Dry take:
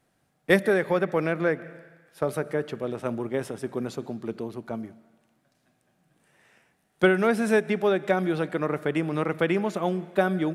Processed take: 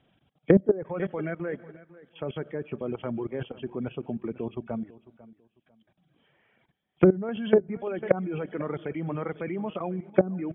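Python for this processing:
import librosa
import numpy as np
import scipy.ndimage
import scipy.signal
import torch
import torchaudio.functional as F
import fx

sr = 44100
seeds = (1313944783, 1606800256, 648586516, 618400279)

y = fx.freq_compress(x, sr, knee_hz=2200.0, ratio=4.0)
y = fx.dereverb_blind(y, sr, rt60_s=1.6)
y = fx.highpass(y, sr, hz=65.0, slope=6)
y = fx.tilt_eq(y, sr, slope=-2.0)
y = fx.level_steps(y, sr, step_db=18)
y = fx.echo_feedback(y, sr, ms=497, feedback_pct=25, wet_db=-19.0)
y = fx.env_lowpass_down(y, sr, base_hz=430.0, full_db=-20.5)
y = y * librosa.db_to_amplitude(5.0)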